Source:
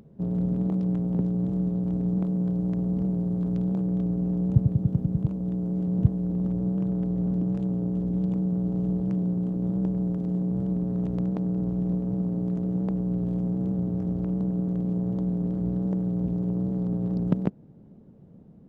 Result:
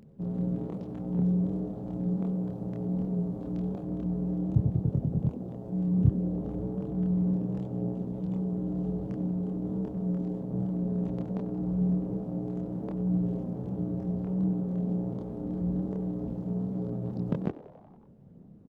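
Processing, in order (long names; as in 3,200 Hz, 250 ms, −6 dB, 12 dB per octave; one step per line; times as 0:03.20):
multi-voice chorus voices 2, 0.38 Hz, delay 27 ms, depth 3.2 ms
echo with shifted repeats 93 ms, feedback 62%, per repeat +110 Hz, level −18 dB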